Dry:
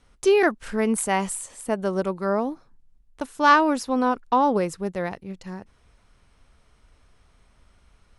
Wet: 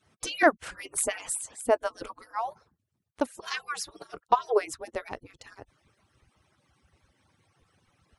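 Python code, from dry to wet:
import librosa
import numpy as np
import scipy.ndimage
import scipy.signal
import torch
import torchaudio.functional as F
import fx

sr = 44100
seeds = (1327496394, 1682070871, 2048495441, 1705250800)

y = fx.hpss_only(x, sr, part='percussive')
y = fx.dynamic_eq(y, sr, hz=530.0, q=0.77, threshold_db=-40.0, ratio=4.0, max_db=5)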